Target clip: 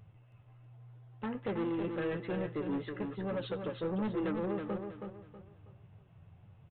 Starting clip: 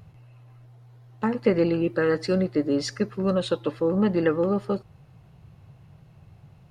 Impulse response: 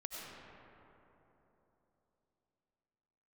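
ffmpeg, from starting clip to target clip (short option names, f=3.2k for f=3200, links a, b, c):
-af "flanger=delay=8.7:depth=3.3:regen=41:speed=1.2:shape=sinusoidal,aresample=8000,asoftclip=type=tanh:threshold=-26.5dB,aresample=44100,aecho=1:1:322|644|966|1288:0.501|0.16|0.0513|0.0164,volume=-4.5dB"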